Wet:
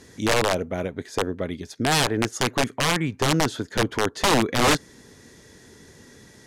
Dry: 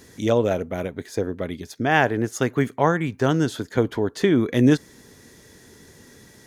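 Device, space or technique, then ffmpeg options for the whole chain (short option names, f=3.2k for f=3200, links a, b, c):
overflowing digital effects unit: -af "aeval=exprs='(mod(4.47*val(0)+1,2)-1)/4.47':c=same,lowpass=9.7k"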